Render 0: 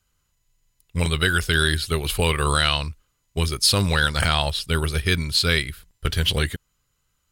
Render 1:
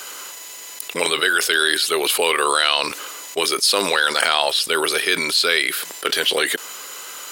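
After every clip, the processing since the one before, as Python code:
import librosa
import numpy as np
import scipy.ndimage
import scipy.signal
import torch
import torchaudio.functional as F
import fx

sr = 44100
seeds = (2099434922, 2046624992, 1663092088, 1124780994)

y = scipy.signal.sosfilt(scipy.signal.butter(4, 360.0, 'highpass', fs=sr, output='sos'), x)
y = fx.env_flatten(y, sr, amount_pct=70)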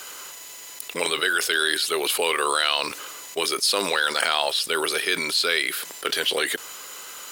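y = fx.quant_dither(x, sr, seeds[0], bits=8, dither='triangular')
y = y * librosa.db_to_amplitude(-4.5)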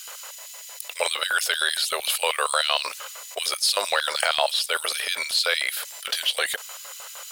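y = fx.filter_lfo_highpass(x, sr, shape='square', hz=6.5, low_hz=380.0, high_hz=3000.0, q=0.76)
y = fx.low_shelf_res(y, sr, hz=450.0, db=-8.0, q=3.0)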